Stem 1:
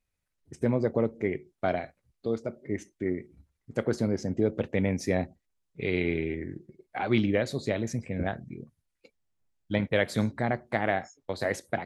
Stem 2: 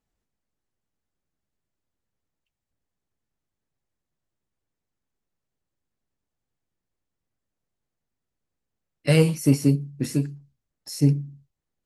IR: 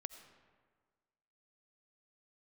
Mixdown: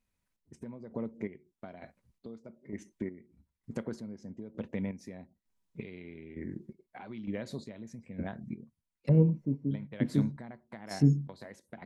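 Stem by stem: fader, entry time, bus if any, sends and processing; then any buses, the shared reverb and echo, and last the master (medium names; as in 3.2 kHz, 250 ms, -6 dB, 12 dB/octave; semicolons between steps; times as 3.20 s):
-0.5 dB, 0.00 s, no send, compression 5:1, threshold -36 dBFS, peak gain reduction 15 dB
-6.5 dB, 0.00 s, no send, gate -39 dBFS, range -11 dB; low-pass that closes with the level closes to 470 Hz, closed at -21.5 dBFS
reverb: none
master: square tremolo 1.1 Hz, depth 65%, duty 40%; small resonant body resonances 210/970 Hz, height 9 dB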